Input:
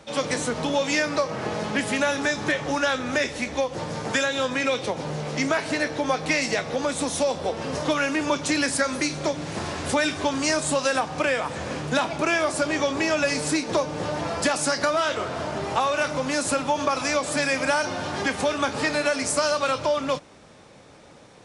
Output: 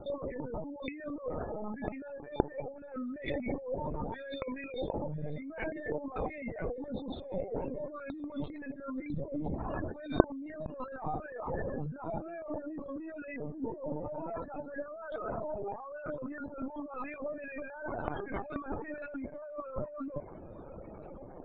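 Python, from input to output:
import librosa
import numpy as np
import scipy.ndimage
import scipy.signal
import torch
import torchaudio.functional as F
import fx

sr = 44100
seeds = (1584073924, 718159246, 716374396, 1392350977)

y = fx.spec_expand(x, sr, power=1.5)
y = fx.highpass(y, sr, hz=220.0, slope=12, at=(5.84, 6.29), fade=0.02)
y = fx.spec_gate(y, sr, threshold_db=-15, keep='strong')
y = fx.lowpass(y, sr, hz=1200.0, slope=12, at=(12.16, 13.08))
y = fx.over_compress(y, sr, threshold_db=-35.0, ratio=-1.0)
y = fx.fixed_phaser(y, sr, hz=520.0, stages=4, at=(2.1, 2.94))
y = fx.echo_feedback(y, sr, ms=1000, feedback_pct=47, wet_db=-19.0)
y = fx.lpc_vocoder(y, sr, seeds[0], excitation='pitch_kept', order=16)
y = y * 10.0 ** (-5.0 / 20.0)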